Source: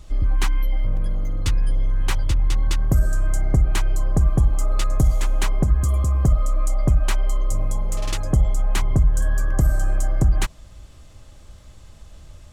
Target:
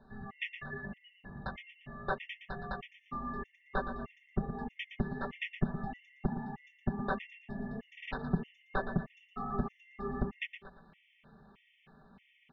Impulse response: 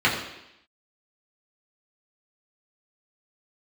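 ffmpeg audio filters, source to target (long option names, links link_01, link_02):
-filter_complex "[0:a]aecho=1:1:5.2:0.77,asplit=2[link_01][link_02];[link_02]aecho=0:1:116|232|348|464:0.316|0.111|0.0387|0.0136[link_03];[link_01][link_03]amix=inputs=2:normalize=0,highpass=frequency=230:width_type=q:width=0.5412,highpass=frequency=230:width_type=q:width=1.307,lowpass=frequency=3200:width_type=q:width=0.5176,lowpass=frequency=3200:width_type=q:width=0.7071,lowpass=frequency=3200:width_type=q:width=1.932,afreqshift=-380,afftfilt=real='re*gt(sin(2*PI*1.6*pts/sr)*(1-2*mod(floor(b*sr/1024/1800),2)),0)':imag='im*gt(sin(2*PI*1.6*pts/sr)*(1-2*mod(floor(b*sr/1024/1800),2)),0)':win_size=1024:overlap=0.75,volume=-3.5dB"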